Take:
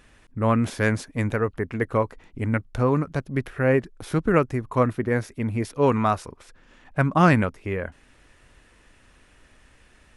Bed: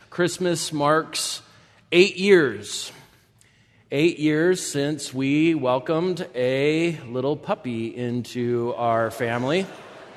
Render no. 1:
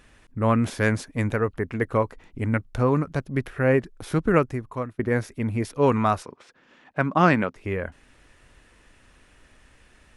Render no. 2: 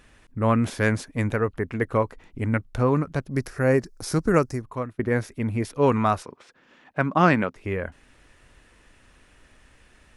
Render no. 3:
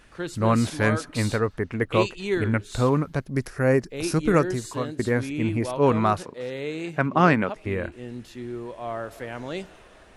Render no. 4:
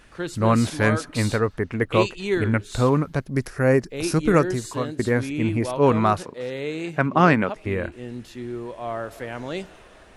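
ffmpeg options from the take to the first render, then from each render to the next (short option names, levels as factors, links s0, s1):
-filter_complex "[0:a]asettb=1/sr,asplit=3[s0][s1][s2];[s0]atrim=end=6.234[s3];[s1]atrim=start=6.23:end=7.56,asetpts=PTS-STARTPTS,afade=t=in:d=0.004:c=qsin,afade=t=out:st=1.326:d=0.004:c=qsin,highpass=180,lowpass=5600[s4];[s2]atrim=start=7.556[s5];[s3][s4]acrossfade=d=0.004:c1=hsin:c2=qsin[s6];[s6][s5]acrossfade=d=0.004:c1=qsin:c2=hsin,asplit=2[s7][s8];[s7]atrim=end=4.99,asetpts=PTS-STARTPTS,afade=t=out:st=4.38:d=0.61:silence=0.0630957[s9];[s8]atrim=start=4.99,asetpts=PTS-STARTPTS,afade=t=in:d=0.004:c=hsin:silence=0.0630957[s10];[s9][s10]concat=n=2:v=0:a=1"
-filter_complex "[0:a]asettb=1/sr,asplit=3[s0][s1][s2];[s0]atrim=end=3.314[s3];[s1]atrim=start=3.31:end=4.62,asetpts=PTS-STARTPTS,afade=t=in:d=0.004:c=qsin,afade=t=out:st=1.306:d=0.004:c=qsin,highshelf=f=4100:t=q:w=3:g=7.5[s4];[s2]atrim=start=4.616[s5];[s3][s4]acrossfade=d=0.004:c1=hsin:c2=qsin[s6];[s6][s5]acrossfade=d=0.004:c1=qsin:c2=hsin"
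-filter_complex "[1:a]volume=0.299[s0];[0:a][s0]amix=inputs=2:normalize=0"
-af "volume=1.26,alimiter=limit=0.708:level=0:latency=1"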